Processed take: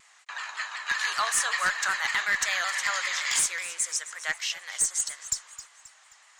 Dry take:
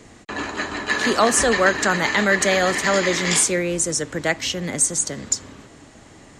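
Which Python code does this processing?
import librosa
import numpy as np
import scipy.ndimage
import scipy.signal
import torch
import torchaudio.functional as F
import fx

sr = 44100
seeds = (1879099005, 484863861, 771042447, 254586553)

p1 = scipy.signal.sosfilt(scipy.signal.butter(4, 1000.0, 'highpass', fs=sr, output='sos'), x)
p2 = fx.clip_asym(p1, sr, top_db=-14.0, bottom_db=-10.5)
p3 = p2 + fx.echo_feedback(p2, sr, ms=265, feedback_pct=41, wet_db=-14.5, dry=0)
p4 = fx.vibrato_shape(p3, sr, shape='saw_down', rate_hz=5.3, depth_cents=100.0)
y = F.gain(torch.from_numpy(p4), -5.5).numpy()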